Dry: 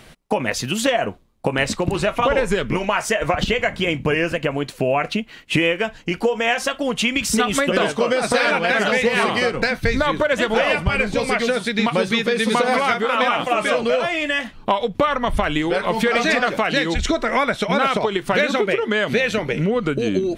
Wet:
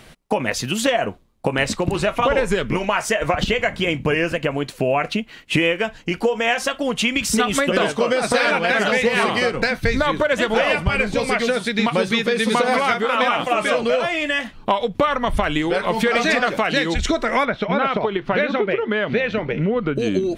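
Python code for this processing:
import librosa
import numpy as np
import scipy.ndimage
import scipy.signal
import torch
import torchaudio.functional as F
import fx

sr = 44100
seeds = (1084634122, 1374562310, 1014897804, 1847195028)

y = fx.air_absorb(x, sr, metres=260.0, at=(17.45, 19.96))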